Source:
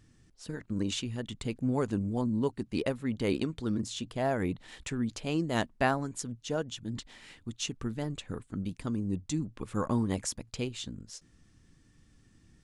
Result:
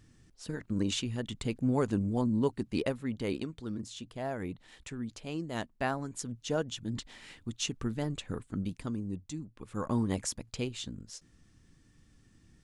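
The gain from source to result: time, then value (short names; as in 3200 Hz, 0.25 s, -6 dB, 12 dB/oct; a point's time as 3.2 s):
2.66 s +1 dB
3.57 s -6.5 dB
5.72 s -6.5 dB
6.44 s +1 dB
8.59 s +1 dB
9.51 s -9.5 dB
9.99 s -0.5 dB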